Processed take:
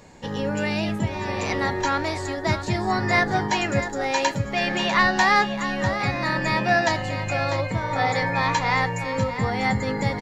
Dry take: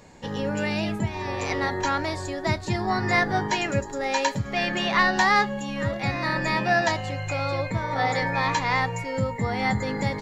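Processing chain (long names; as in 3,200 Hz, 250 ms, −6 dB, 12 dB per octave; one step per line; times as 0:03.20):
single-tap delay 647 ms −10.5 dB
level +1.5 dB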